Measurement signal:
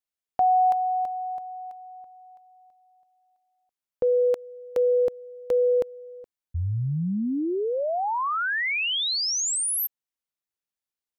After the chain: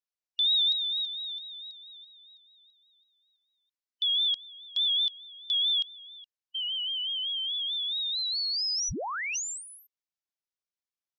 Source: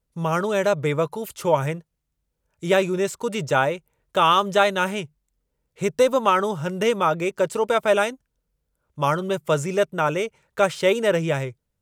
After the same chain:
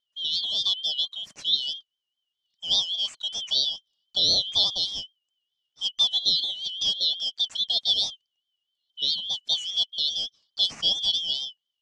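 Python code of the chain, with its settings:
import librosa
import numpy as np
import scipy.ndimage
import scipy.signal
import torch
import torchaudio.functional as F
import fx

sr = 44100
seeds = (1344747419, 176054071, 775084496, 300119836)

y = fx.band_shuffle(x, sr, order='3412')
y = fx.wow_flutter(y, sr, seeds[0], rate_hz=4.7, depth_cents=76.0)
y = fx.ladder_lowpass(y, sr, hz=7000.0, resonance_pct=35)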